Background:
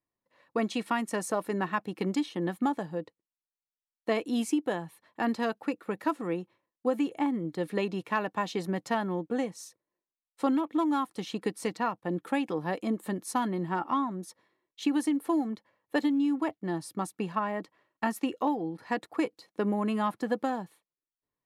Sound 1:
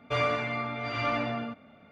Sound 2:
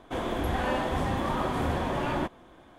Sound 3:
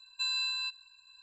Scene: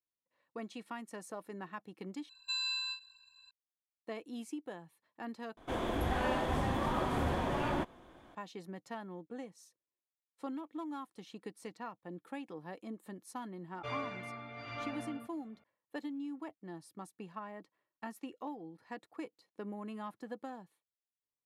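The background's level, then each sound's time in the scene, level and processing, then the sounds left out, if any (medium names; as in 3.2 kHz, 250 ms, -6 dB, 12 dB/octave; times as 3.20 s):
background -14.5 dB
2.29 s: replace with 3 -3.5 dB + endings held to a fixed fall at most 210 dB/s
5.57 s: replace with 2 -4.5 dB
13.73 s: add 1 -13 dB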